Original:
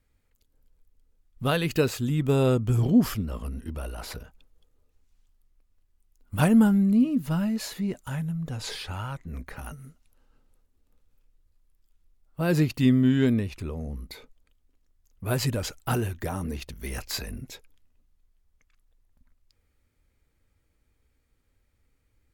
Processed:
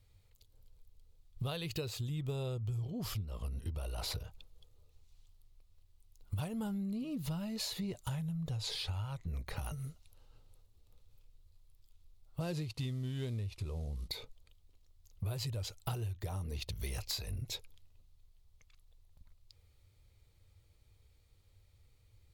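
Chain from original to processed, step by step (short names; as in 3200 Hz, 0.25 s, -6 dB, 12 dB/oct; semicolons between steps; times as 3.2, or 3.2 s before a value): 12.4–14.08 CVSD 64 kbps; fifteen-band EQ 100 Hz +10 dB, 250 Hz -11 dB, 1600 Hz -8 dB, 4000 Hz +7 dB; compressor 16:1, threshold -37 dBFS, peak gain reduction 22.5 dB; gain +2 dB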